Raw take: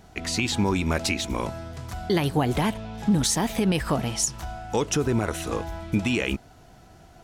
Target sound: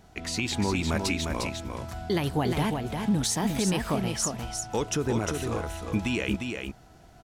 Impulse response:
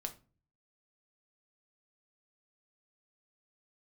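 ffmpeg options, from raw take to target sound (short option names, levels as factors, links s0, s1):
-af "aecho=1:1:353:0.562,volume=0.631"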